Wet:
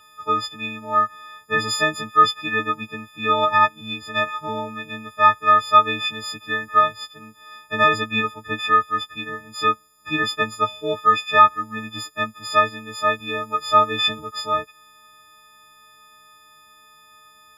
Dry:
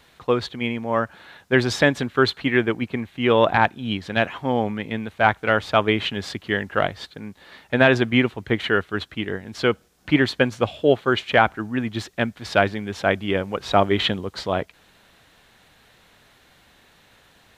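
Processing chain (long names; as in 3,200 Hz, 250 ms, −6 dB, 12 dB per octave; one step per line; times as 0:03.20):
every partial snapped to a pitch grid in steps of 6 semitones
hollow resonant body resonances 1,300/2,900 Hz, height 17 dB, ringing for 20 ms
level −9 dB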